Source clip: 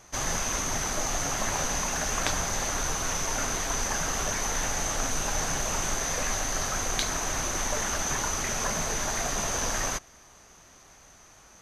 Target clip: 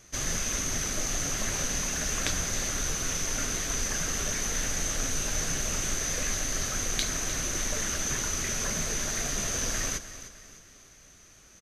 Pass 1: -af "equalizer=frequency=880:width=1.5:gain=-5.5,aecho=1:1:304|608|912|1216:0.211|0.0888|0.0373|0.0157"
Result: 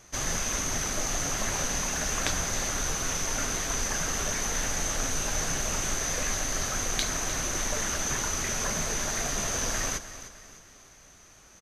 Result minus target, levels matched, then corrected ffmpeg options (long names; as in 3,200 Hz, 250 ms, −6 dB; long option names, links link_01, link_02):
1,000 Hz band +4.5 dB
-af "equalizer=frequency=880:width=1.5:gain=-13,aecho=1:1:304|608|912|1216:0.211|0.0888|0.0373|0.0157"